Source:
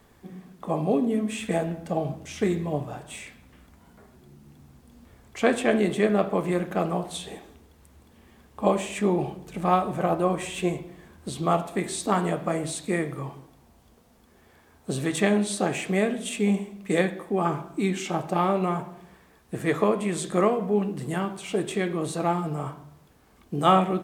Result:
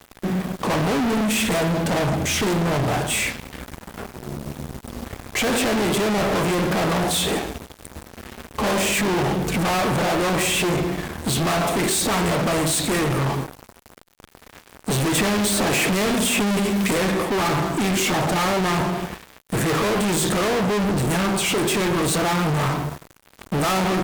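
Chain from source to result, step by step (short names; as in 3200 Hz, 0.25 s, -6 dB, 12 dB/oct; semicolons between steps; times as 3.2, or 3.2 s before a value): fuzz box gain 45 dB, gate -52 dBFS; 15.15–16.91 three-band squash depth 70%; gain -6.5 dB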